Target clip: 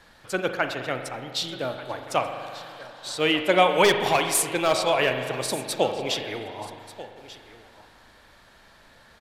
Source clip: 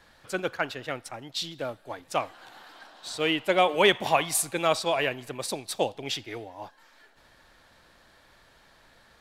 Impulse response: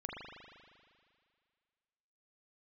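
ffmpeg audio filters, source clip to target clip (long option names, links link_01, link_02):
-filter_complex "[0:a]aresample=32000,aresample=44100,asettb=1/sr,asplit=3[link_01][link_02][link_03];[link_01]atrim=end=3.844[link_04];[link_02]atrim=start=3.84:end=4.96,asetpts=PTS-STARTPTS,afade=type=in:duration=0.004:curve=qsin,afade=type=out:start_time=1.116:duration=0.004:curve=qsin,volume=18dB,asoftclip=hard,volume=-18dB[link_05];[link_03]atrim=start=4.956[link_06];[link_04][link_05]acrossfade=duration=0.004:curve1=hsin:curve2=qsin[link_07];[link_07][link_06]acrossfade=duration=0.004:curve1=qsin:curve2=hsin,aecho=1:1:1188:0.141,asplit=2[link_08][link_09];[1:a]atrim=start_sample=2205[link_10];[link_09][link_10]afir=irnorm=-1:irlink=0,volume=-2dB[link_11];[link_08][link_11]amix=inputs=2:normalize=0"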